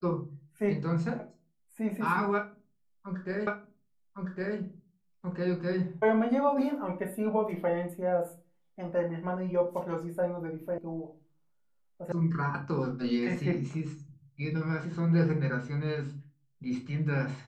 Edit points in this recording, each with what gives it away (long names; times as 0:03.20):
0:03.47: the same again, the last 1.11 s
0:10.78: cut off before it has died away
0:12.12: cut off before it has died away